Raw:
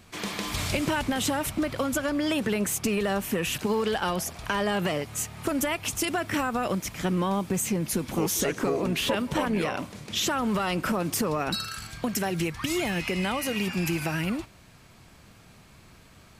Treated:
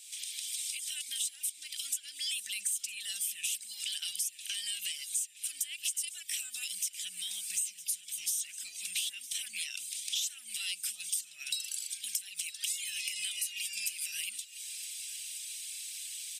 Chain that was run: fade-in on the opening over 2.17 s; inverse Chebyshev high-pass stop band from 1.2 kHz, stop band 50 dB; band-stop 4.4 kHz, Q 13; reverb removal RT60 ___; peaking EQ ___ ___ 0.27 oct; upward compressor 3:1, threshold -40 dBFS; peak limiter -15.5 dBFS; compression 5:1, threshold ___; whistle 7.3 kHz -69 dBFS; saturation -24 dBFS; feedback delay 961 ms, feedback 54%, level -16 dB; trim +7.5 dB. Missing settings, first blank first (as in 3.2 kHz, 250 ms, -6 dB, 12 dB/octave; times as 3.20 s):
0.56 s, 8.7 kHz, +12.5 dB, -40 dBFS